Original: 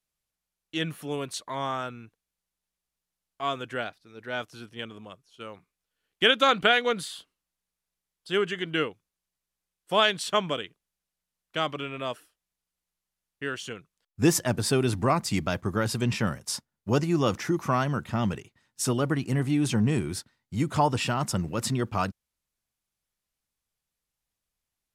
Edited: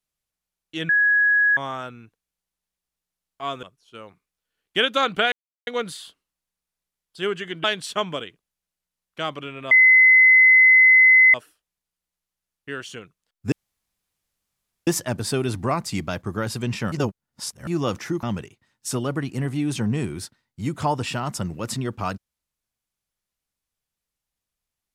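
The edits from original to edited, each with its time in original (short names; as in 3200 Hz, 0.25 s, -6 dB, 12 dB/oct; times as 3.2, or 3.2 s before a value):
0.89–1.57 bleep 1670 Hz -14.5 dBFS
3.63–5.09 cut
6.78 insert silence 0.35 s
8.75–10.01 cut
12.08 add tone 2040 Hz -9.5 dBFS 1.63 s
14.26 insert room tone 1.35 s
16.31–17.06 reverse
17.62–18.17 cut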